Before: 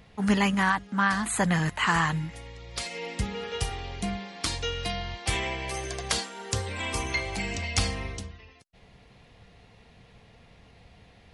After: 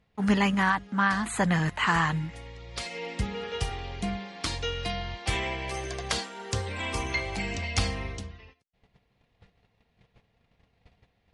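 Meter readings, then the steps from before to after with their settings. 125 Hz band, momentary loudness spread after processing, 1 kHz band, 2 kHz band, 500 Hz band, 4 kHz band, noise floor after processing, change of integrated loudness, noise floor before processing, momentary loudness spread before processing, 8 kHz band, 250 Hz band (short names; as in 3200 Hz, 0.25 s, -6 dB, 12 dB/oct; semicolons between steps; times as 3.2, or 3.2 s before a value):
0.0 dB, 11 LU, 0.0 dB, -0.5 dB, 0.0 dB, -1.5 dB, -72 dBFS, -0.5 dB, -56 dBFS, 10 LU, -4.5 dB, 0.0 dB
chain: gate -51 dBFS, range -16 dB; high shelf 8600 Hz -11.5 dB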